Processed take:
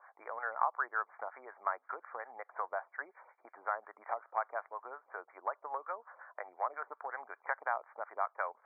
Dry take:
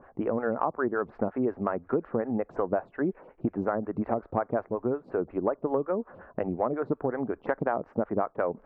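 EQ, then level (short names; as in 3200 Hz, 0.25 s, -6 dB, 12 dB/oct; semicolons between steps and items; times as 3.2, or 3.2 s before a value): HPF 870 Hz 24 dB/oct; brick-wall FIR low-pass 2400 Hz; 0.0 dB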